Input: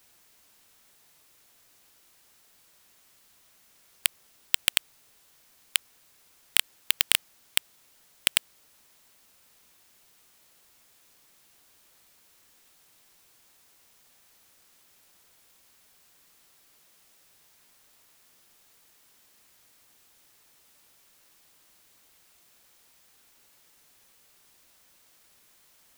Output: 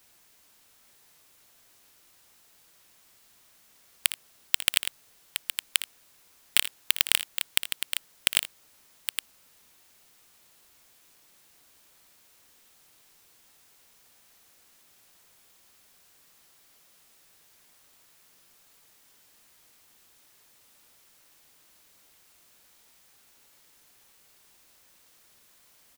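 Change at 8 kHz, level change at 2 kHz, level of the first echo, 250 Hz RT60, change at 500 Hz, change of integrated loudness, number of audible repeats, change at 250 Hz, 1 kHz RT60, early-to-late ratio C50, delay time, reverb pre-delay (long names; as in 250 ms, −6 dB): +1.0 dB, +1.0 dB, −13.0 dB, no reverb audible, +1.0 dB, −1.0 dB, 2, +1.0 dB, no reverb audible, no reverb audible, 59 ms, no reverb audible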